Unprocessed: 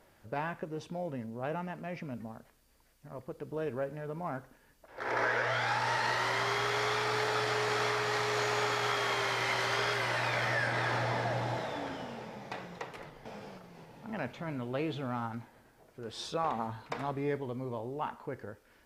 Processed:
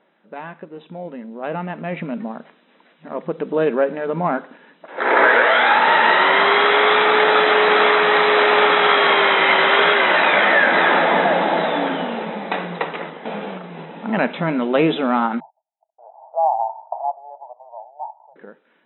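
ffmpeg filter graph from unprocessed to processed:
-filter_complex "[0:a]asettb=1/sr,asplit=3[s0][s1][s2];[s0]atrim=end=15.404[s3];[s1]atrim=start=15.4:end=18.36,asetpts=PTS-STARTPTS,afade=t=in:d=0.004:c=qsin,afade=t=out:st=2.956:d=0.004:c=qsin,agate=range=0.01:threshold=0.00141:ratio=16:release=100:detection=peak,asuperpass=centerf=760:order=8:qfactor=2.6[s4];[s2]atrim=start=18.356[s5];[s3][s4]acrossfade=d=0.004:c1=hsin:c2=qsin[s6];[s6][s5]acrossfade=d=0.004:c1=qsin:c2=hsin,afftfilt=real='re*between(b*sr/4096,160,4000)':imag='im*between(b*sr/4096,160,4000)':win_size=4096:overlap=0.75,dynaudnorm=f=300:g=13:m=6.68,volume=1.26"

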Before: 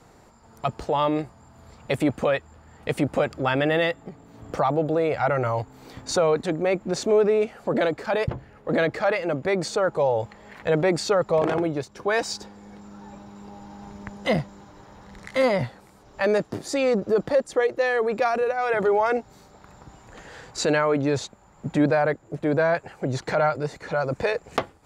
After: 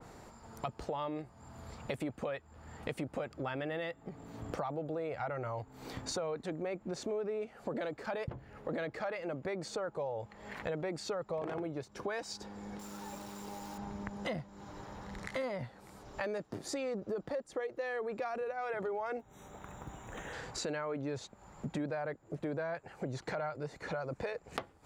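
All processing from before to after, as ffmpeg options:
-filter_complex "[0:a]asettb=1/sr,asplit=3[s0][s1][s2];[s0]atrim=end=12.794[s3];[s1]atrim=start=12.79:end=13.78,asetpts=PTS-STARTPTS,afade=t=in:d=0.004:c=qsin,afade=t=out:st=0.986:d=0.004:c=qsin,bass=f=250:g=-7,treble=f=4000:g=10,bandreject=f=710:w=11,acrusher=bits=9:dc=4:mix=0:aa=0.000001[s4];[s2]atrim=start=13.776[s5];[s3][s4]acrossfade=d=0.004:c1=hsin:c2=qsin[s6];[s6][s5]acrossfade=d=0.004:c1=qsin:c2=hsin,asettb=1/sr,asplit=3[s7][s8][s9];[s7]atrim=end=19.194[s10];[s8]atrim=start=19.19:end=20.33,asetpts=PTS-STARTPTS,afade=t=in:d=0.004:c=qsin,afade=t=out:st=1.136:d=0.004:c=qsin,asuperstop=centerf=4700:order=12:qfactor=2.8,acrusher=bits=7:mode=log:mix=0:aa=0.000001[s11];[s9]atrim=start=20.326[s12];[s10][s11]acrossfade=d=0.004:c1=hsin:c2=qsin[s13];[s13][s12]acrossfade=d=0.004:c1=qsin:c2=hsin,acompressor=threshold=0.0126:ratio=4,adynamicequalizer=threshold=0.00178:dfrequency=2600:dqfactor=0.7:tfrequency=2600:tqfactor=0.7:attack=5:release=100:ratio=0.375:range=1.5:mode=cutabove:tftype=highshelf"

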